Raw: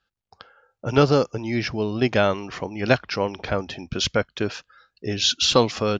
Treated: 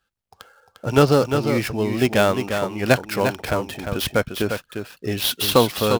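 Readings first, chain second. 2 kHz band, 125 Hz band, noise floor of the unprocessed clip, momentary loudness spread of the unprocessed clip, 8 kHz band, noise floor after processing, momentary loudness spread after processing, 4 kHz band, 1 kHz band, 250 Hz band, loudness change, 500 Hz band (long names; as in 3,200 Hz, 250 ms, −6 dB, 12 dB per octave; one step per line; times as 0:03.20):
+2.0 dB, +2.5 dB, −81 dBFS, 12 LU, +0.5 dB, −74 dBFS, 11 LU, −1.5 dB, +3.0 dB, +2.5 dB, +1.5 dB, +2.5 dB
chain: gap after every zero crossing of 0.066 ms
single-tap delay 351 ms −7 dB
level +2 dB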